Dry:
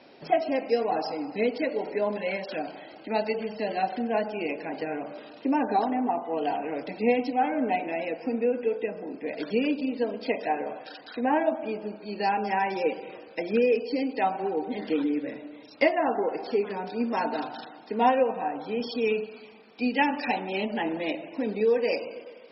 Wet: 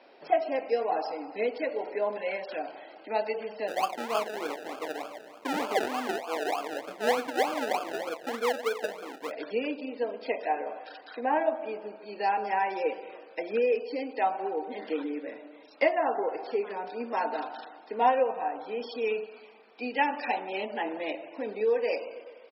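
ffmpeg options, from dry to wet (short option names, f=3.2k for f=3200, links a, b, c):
-filter_complex "[0:a]asplit=3[a][b][c];[a]afade=t=out:st=3.67:d=0.02[d];[b]acrusher=samples=32:mix=1:aa=0.000001:lfo=1:lforange=19.2:lforate=3.3,afade=t=in:st=3.67:d=0.02,afade=t=out:st=9.3:d=0.02[e];[c]afade=t=in:st=9.3:d=0.02[f];[d][e][f]amix=inputs=3:normalize=0,asplit=3[g][h][i];[g]afade=t=out:st=10.69:d=0.02[j];[h]aecho=1:1:156|312|468|624:0.0631|0.0353|0.0198|0.0111,afade=t=in:st=10.69:d=0.02,afade=t=out:st=13.01:d=0.02[k];[i]afade=t=in:st=13.01:d=0.02[l];[j][k][l]amix=inputs=3:normalize=0,highpass=440,highshelf=f=4k:g=-12"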